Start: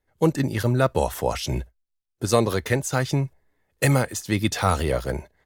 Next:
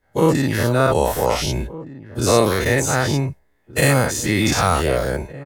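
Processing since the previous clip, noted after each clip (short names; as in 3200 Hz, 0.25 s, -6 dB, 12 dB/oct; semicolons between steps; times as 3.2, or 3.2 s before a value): spectral dilation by 0.12 s; outdoor echo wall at 260 m, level -17 dB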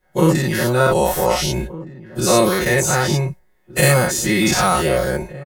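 high shelf 8500 Hz +4 dB; comb 5.5 ms, depth 93%; gain -1 dB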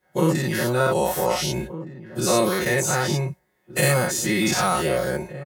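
HPF 95 Hz; in parallel at -1 dB: compressor, threshold -24 dBFS, peak gain reduction 14 dB; on the sum: gain -7 dB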